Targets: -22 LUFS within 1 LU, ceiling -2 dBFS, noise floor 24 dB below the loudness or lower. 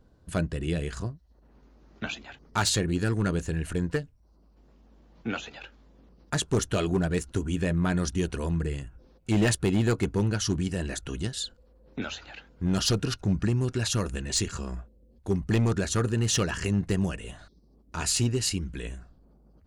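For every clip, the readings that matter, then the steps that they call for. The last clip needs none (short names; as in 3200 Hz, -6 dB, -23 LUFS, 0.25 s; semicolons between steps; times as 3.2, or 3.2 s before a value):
clipped 0.9%; flat tops at -18.0 dBFS; loudness -28.5 LUFS; peak -18.0 dBFS; loudness target -22.0 LUFS
-> clip repair -18 dBFS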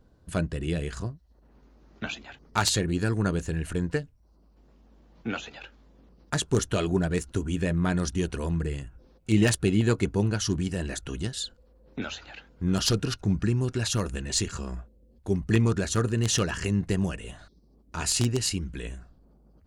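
clipped 0.0%; loudness -28.0 LUFS; peak -9.0 dBFS; loudness target -22.0 LUFS
-> gain +6 dB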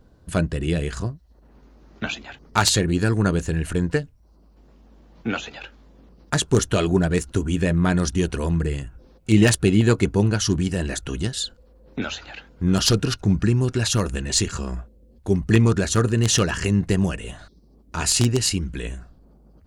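loudness -22.0 LUFS; peak -3.0 dBFS; noise floor -54 dBFS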